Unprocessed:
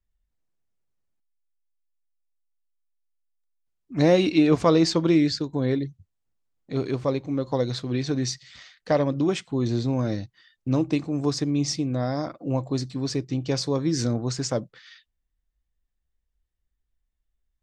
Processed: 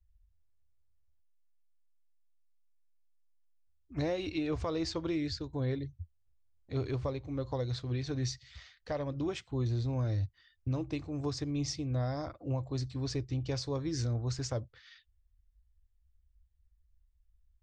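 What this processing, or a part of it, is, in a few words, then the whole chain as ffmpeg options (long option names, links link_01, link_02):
car stereo with a boomy subwoofer: -af "lowshelf=frequency=120:width_type=q:width=3:gain=14,alimiter=limit=-18dB:level=0:latency=1:release=400,lowpass=7200,volume=-7dB"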